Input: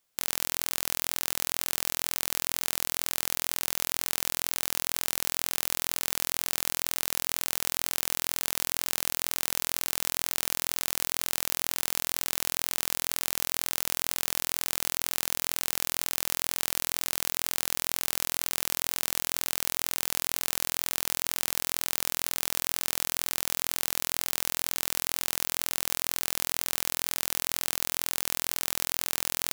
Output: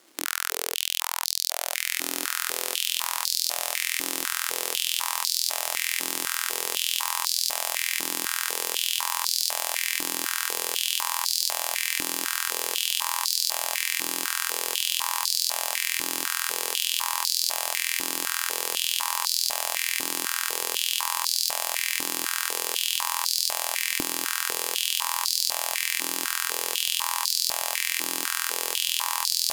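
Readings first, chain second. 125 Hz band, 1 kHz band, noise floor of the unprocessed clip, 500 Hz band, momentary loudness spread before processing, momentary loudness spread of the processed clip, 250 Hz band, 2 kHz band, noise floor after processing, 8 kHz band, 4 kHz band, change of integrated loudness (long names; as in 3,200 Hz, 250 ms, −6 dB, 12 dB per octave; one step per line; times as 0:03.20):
below −10 dB, +7.5 dB, −75 dBFS, +3.5 dB, 0 LU, 3 LU, +1.0 dB, +6.0 dB, −35 dBFS, +4.0 dB, +7.5 dB, +3.5 dB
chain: Bessel low-pass filter 11,000 Hz, order 6
surface crackle 420 per second −59 dBFS
in parallel at −6 dB: sine wavefolder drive 15 dB, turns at −6.5 dBFS
on the sum: feedback delay with all-pass diffusion 1,877 ms, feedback 69%, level −7 dB
high-pass on a step sequencer 4 Hz 300–4,500 Hz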